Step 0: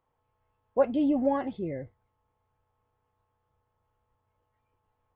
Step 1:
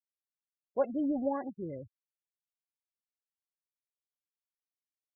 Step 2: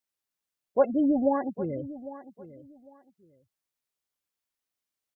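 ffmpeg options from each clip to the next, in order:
-af "afftfilt=real='re*gte(hypot(re,im),0.0224)':imag='im*gte(hypot(re,im),0.0224)':win_size=1024:overlap=0.75,volume=-6dB"
-af "aecho=1:1:802|1604:0.158|0.0349,volume=7.5dB"

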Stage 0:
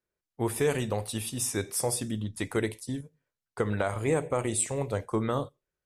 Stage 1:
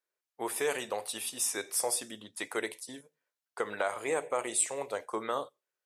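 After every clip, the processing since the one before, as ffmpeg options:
-af "highpass=540"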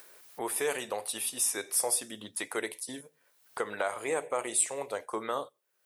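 -af "acompressor=mode=upward:threshold=-33dB:ratio=2.5,aexciter=amount=1.6:drive=4.4:freq=9.5k"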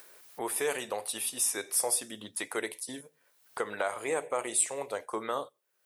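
-af anull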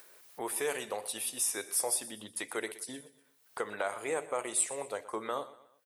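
-af "aecho=1:1:121|242|363:0.141|0.0579|0.0237,volume=-2.5dB"

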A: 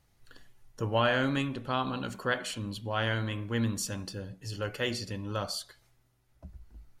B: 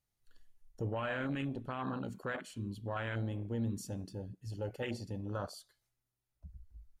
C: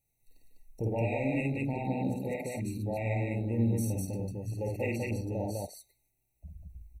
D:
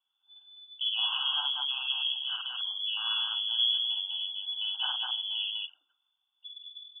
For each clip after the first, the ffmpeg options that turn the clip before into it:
-af "afwtdn=0.02,highshelf=f=4.7k:g=8.5,alimiter=level_in=1.5dB:limit=-24dB:level=0:latency=1:release=11,volume=-1.5dB,volume=-3dB"
-af "aexciter=amount=1.3:drive=3.6:freq=2.5k,aecho=1:1:52.48|201.2:0.794|0.891,afftfilt=real='re*eq(mod(floor(b*sr/1024/930),2),0)':imag='im*eq(mod(floor(b*sr/1024/930),2),0)':win_size=1024:overlap=0.75,volume=3.5dB"
-af "lowpass=f=3k:t=q:w=0.5098,lowpass=f=3k:t=q:w=0.6013,lowpass=f=3k:t=q:w=0.9,lowpass=f=3k:t=q:w=2.563,afreqshift=-3500"

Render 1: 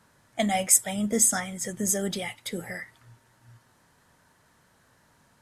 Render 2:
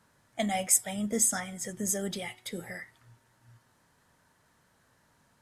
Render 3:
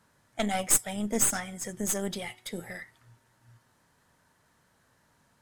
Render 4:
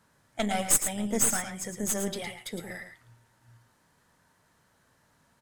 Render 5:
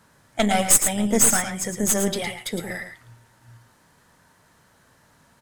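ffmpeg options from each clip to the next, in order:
-af "bandreject=f=369.1:t=h:w=4,bandreject=f=738.2:t=h:w=4,bandreject=f=1.1073k:t=h:w=4,bandreject=f=1.4764k:t=h:w=4,bandreject=f=1.8455k:t=h:w=4,bandreject=f=2.2146k:t=h:w=4,bandreject=f=2.5837k:t=h:w=4,bandreject=f=2.9528k:t=h:w=4,bandreject=f=3.3219k:t=h:w=4,bandreject=f=3.691k:t=h:w=4,bandreject=f=4.0601k:t=h:w=4,bandreject=f=4.4292k:t=h:w=4,bandreject=f=4.7983k:t=h:w=4,bandreject=f=5.1674k:t=h:w=4,bandreject=f=5.5365k:t=h:w=4,volume=-4.5dB"
-af "aeval=exprs='0.376*(cos(1*acos(clip(val(0)/0.376,-1,1)))-cos(1*PI/2))+0.0376*(cos(4*acos(clip(val(0)/0.376,-1,1)))-cos(4*PI/2))+0.0237*(cos(8*acos(clip(val(0)/0.376,-1,1)))-cos(8*PI/2))':c=same"
-af "aecho=1:1:111:0.376"
-af "asoftclip=type=hard:threshold=-14.5dB,volume=8.5dB"

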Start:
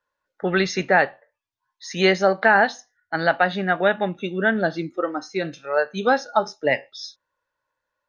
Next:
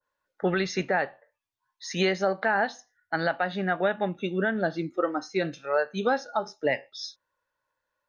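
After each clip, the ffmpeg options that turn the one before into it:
-af "alimiter=limit=-12.5dB:level=0:latency=1:release=296,adynamicequalizer=threshold=0.0126:dfrequency=1600:dqfactor=0.7:tfrequency=1600:tqfactor=0.7:attack=5:release=100:ratio=0.375:range=1.5:mode=cutabove:tftype=highshelf,volume=-1.5dB"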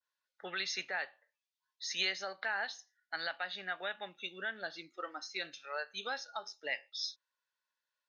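-af "bandpass=f=4.1k:t=q:w=1.1:csg=0"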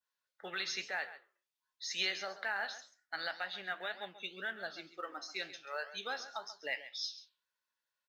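-filter_complex "[0:a]flanger=delay=8.9:depth=7.1:regen=-79:speed=2:shape=triangular,asplit=2[a][b];[b]acrusher=bits=5:mode=log:mix=0:aa=0.000001,volume=-12dB[c];[a][c]amix=inputs=2:normalize=0,aecho=1:1:135:0.2,volume=1.5dB"

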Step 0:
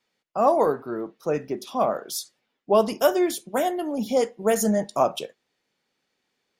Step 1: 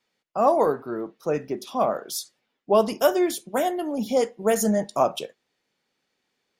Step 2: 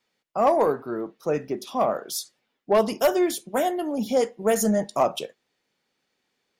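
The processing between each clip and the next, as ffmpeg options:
-af anull
-af "aeval=exprs='0.316*(abs(mod(val(0)/0.316+3,4)-2)-1)':c=same,acontrast=80,volume=-6.5dB"

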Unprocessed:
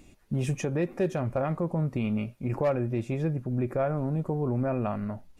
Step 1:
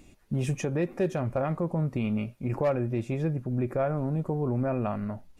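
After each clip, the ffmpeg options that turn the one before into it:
-af anull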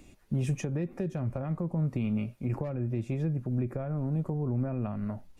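-filter_complex "[0:a]acrossover=split=260[a][b];[b]acompressor=threshold=-38dB:ratio=6[c];[a][c]amix=inputs=2:normalize=0"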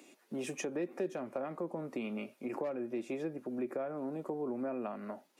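-af "highpass=f=290:w=0.5412,highpass=f=290:w=1.3066,volume=1dB"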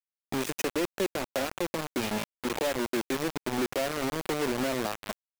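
-af "acrusher=bits=5:mix=0:aa=0.000001,volume=6dB"

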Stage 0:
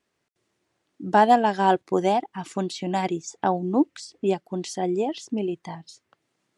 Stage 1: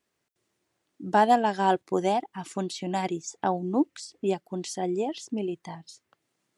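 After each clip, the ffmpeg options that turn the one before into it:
-af "highshelf=f=8.9k:g=9,volume=-3.5dB"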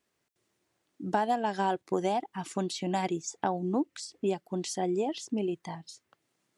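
-af "acompressor=threshold=-24dB:ratio=6"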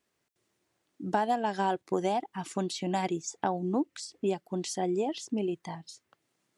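-af anull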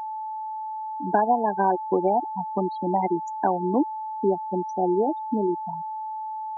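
-filter_complex "[0:a]afftfilt=real='re*gte(hypot(re,im),0.0631)':imag='im*gte(hypot(re,im),0.0631)':win_size=1024:overlap=0.75,acrossover=split=170 2300:gain=0.0794 1 0.141[a][b][c];[a][b][c]amix=inputs=3:normalize=0,aeval=exprs='val(0)+0.0141*sin(2*PI*870*n/s)':c=same,volume=7.5dB"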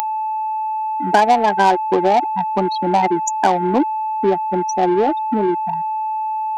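-filter_complex "[0:a]asplit=2[a][b];[b]asoftclip=type=tanh:threshold=-25dB,volume=-4dB[c];[a][c]amix=inputs=2:normalize=0,crystalizer=i=9.5:c=0,volume=2.5dB"

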